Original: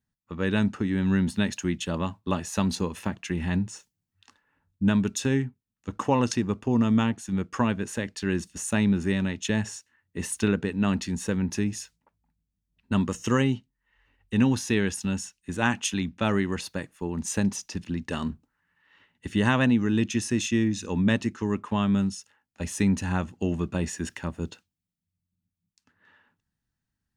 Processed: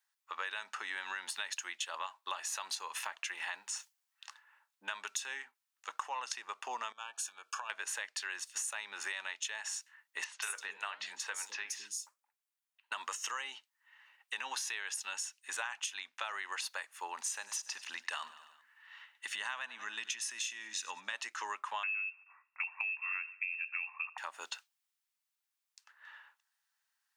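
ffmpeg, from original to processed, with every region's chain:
ffmpeg -i in.wav -filter_complex "[0:a]asettb=1/sr,asplit=3[link_01][link_02][link_03];[link_01]atrim=end=6.924[link_04];[link_02]atrim=start=6.92:end=7.7,asetpts=PTS-STARTPTS,afade=type=in:duration=0.004:curve=qsin,afade=type=out:start_time=0.776:duration=0.004:curve=qsin,acompressor=threshold=-37dB:ratio=6:attack=3.2:release=140:knee=1:detection=peak,asuperstop=centerf=2000:order=20:qfactor=4.3,bass=frequency=250:gain=-6,treble=frequency=4000:gain=3[link_05];[link_03]atrim=start=7.696[link_06];[link_04][link_05]acrossfade=duration=0.004:curve1=hsin:curve2=qsin[link_07];[link_07][link_06]acrossfade=duration=0.004:curve1=qsin:curve2=hsin,asettb=1/sr,asplit=3[link_08][link_09][link_10];[link_08]atrim=end=10.244[link_11];[link_09]atrim=start=10.24:end=12.92,asetpts=PTS-STARTPTS,afade=type=in:duration=0.004:curve=qsin,afade=type=out:start_time=2.676:duration=0.004:curve=qsin,bandreject=frequency=60:width_type=h:width=6,bandreject=frequency=120:width_type=h:width=6,bandreject=frequency=180:width_type=h:width=6,bandreject=frequency=240:width_type=h:width=6,bandreject=frequency=300:width_type=h:width=6,bandreject=frequency=360:width_type=h:width=6,bandreject=frequency=420:width_type=h:width=6,bandreject=frequency=480:width_type=h:width=6,bandreject=frequency=540:width_type=h:width=6,bandreject=frequency=600:width_type=h:width=6,acrossover=split=320|4700[link_12][link_13][link_14];[link_14]adelay=180[link_15];[link_12]adelay=210[link_16];[link_16][link_13][link_15]amix=inputs=3:normalize=0,atrim=end_sample=118188,flanger=delay=3.4:depth=7.5:regen=-82:speed=1:shape=triangular[link_17];[link_10]atrim=start=12.916[link_18];[link_11][link_17]acrossfade=duration=0.004:curve1=hsin:curve2=qsin[link_19];[link_19][link_18]acrossfade=duration=0.004:curve1=qsin:curve2=hsin,asettb=1/sr,asplit=3[link_20][link_21][link_22];[link_20]atrim=end=17.164[link_23];[link_21]atrim=start=17.16:end=21.13,asetpts=PTS-STARTPTS,afade=type=in:duration=0.004:curve=qsin,afade=type=out:start_time=3.966:duration=0.004:curve=qsin,asubboost=boost=8.5:cutoff=170,aecho=1:1:96|192|288|384:0.0944|0.0529|0.0296|0.0166,atrim=end_sample=175077[link_24];[link_22]atrim=start=21.126[link_25];[link_23][link_24]acrossfade=duration=0.004:curve1=hsin:curve2=qsin[link_26];[link_26][link_25]acrossfade=duration=0.004:curve1=qsin:curve2=hsin,asettb=1/sr,asplit=3[link_27][link_28][link_29];[link_27]atrim=end=21.834[link_30];[link_28]atrim=start=21.83:end=24.18,asetpts=PTS-STARTPTS,afade=type=in:duration=0.004:curve=qsin,afade=type=out:start_time=2.346:duration=0.004:curve=qsin,aecho=1:1:75|150|225:0.0794|0.0302|0.0115,atrim=end_sample=103635,lowpass=frequency=2400:width_type=q:width=0.5098,lowpass=frequency=2400:width_type=q:width=0.6013,lowpass=frequency=2400:width_type=q:width=0.9,lowpass=frequency=2400:width_type=q:width=2.563,afreqshift=-2800[link_31];[link_29]atrim=start=24.176[link_32];[link_30][link_31]acrossfade=duration=0.004:curve1=hsin:curve2=qsin[link_33];[link_33][link_32]acrossfade=duration=0.004:curve1=qsin:curve2=hsin,alimiter=limit=-16dB:level=0:latency=1:release=75,highpass=frequency=860:width=0.5412,highpass=frequency=860:width=1.3066,acompressor=threshold=-42dB:ratio=10,volume=6.5dB" out.wav

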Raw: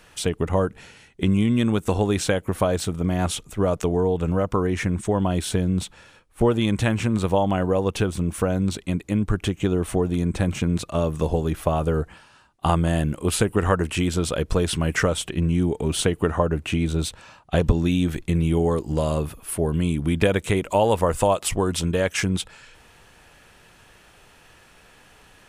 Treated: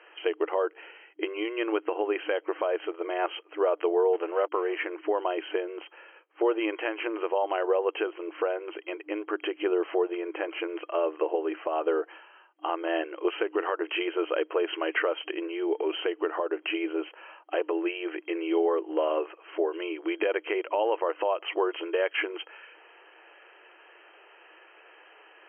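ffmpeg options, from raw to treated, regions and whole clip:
ffmpeg -i in.wav -filter_complex "[0:a]asettb=1/sr,asplit=3[link_01][link_02][link_03];[link_01]atrim=end=4.134[link_04];[link_02]atrim=start=4.13:end=4.87,asetpts=PTS-STARTPTS,afade=type=in:duration=0.004:curve=qsin,afade=type=out:start_time=0.736:duration=0.004:curve=qsin,asubboost=boost=6.5:cutoff=130,aeval=exprs='sgn(val(0))*max(abs(val(0))-0.00944,0)':channel_layout=same[link_05];[link_03]atrim=start=4.866[link_06];[link_04][link_05]acrossfade=duration=0.004:curve1=hsin:curve2=qsin[link_07];[link_07][link_06]acrossfade=duration=0.004:curve1=qsin:curve2=hsin,afftfilt=real='re*between(b*sr/4096,310,3200)':imag='im*between(b*sr/4096,310,3200)':win_size=4096:overlap=0.75,alimiter=limit=-15.5dB:level=0:latency=1:release=191" out.wav

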